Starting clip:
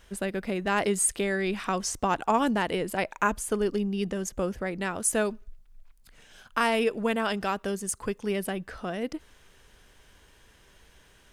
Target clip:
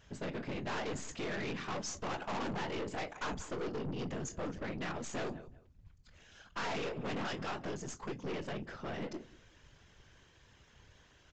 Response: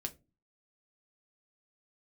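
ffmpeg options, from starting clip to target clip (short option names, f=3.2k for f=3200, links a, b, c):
-filter_complex "[0:a]asplit=2[a][b];[1:a]atrim=start_sample=2205,asetrate=57330,aresample=44100,adelay=22[c];[b][c]afir=irnorm=-1:irlink=0,volume=-5.5dB[d];[a][d]amix=inputs=2:normalize=0,afftfilt=real='hypot(re,im)*cos(2*PI*random(0))':imag='hypot(re,im)*sin(2*PI*random(1))':win_size=512:overlap=0.75,asplit=2[e][f];[f]adelay=185,lowpass=f=3.5k:p=1,volume=-22dB,asplit=2[g][h];[h]adelay=185,lowpass=f=3.5k:p=1,volume=0.22[i];[e][g][i]amix=inputs=3:normalize=0,aeval=exprs='(tanh(79.4*val(0)+0.5)-tanh(0.5))/79.4':c=same,aresample=16000,aresample=44100,volume=2.5dB"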